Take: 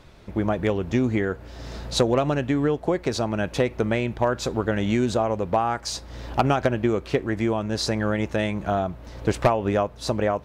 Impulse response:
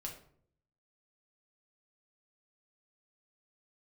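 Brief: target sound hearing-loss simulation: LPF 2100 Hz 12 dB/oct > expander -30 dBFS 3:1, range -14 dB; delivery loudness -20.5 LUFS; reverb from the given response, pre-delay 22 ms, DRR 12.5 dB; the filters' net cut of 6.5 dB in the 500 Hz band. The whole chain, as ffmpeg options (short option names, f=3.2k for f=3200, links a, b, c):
-filter_complex "[0:a]equalizer=f=500:t=o:g=-8.5,asplit=2[a][b];[1:a]atrim=start_sample=2205,adelay=22[c];[b][c]afir=irnorm=-1:irlink=0,volume=-10.5dB[d];[a][d]amix=inputs=2:normalize=0,lowpass=2.1k,agate=range=-14dB:threshold=-30dB:ratio=3,volume=7dB"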